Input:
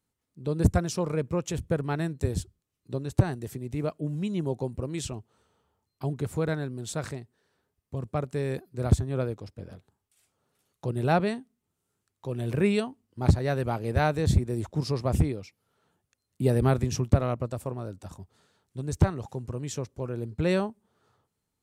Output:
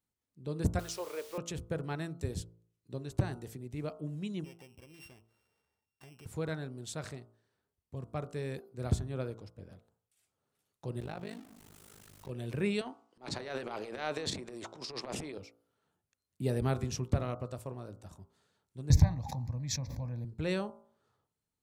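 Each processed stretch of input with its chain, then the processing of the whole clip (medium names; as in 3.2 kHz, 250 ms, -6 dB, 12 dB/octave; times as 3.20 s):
0.79–1.38 s: high-pass 380 Hz 24 dB/octave + word length cut 8-bit, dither triangular
4.44–6.26 s: sorted samples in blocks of 16 samples + bass shelf 360 Hz -5.5 dB + compression 3:1, threshold -46 dBFS
11.00–12.30 s: jump at every zero crossing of -38.5 dBFS + AM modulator 51 Hz, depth 90% + compression 12:1, threshold -28 dBFS
12.81–15.38 s: band-pass 370–6900 Hz + transient shaper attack -12 dB, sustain +11 dB
18.90–20.25 s: bass shelf 220 Hz +9.5 dB + static phaser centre 2 kHz, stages 8 + swell ahead of each attack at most 23 dB/s
whole clip: dynamic bell 3.8 kHz, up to +4 dB, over -51 dBFS, Q 0.71; de-hum 56.41 Hz, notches 26; trim -8 dB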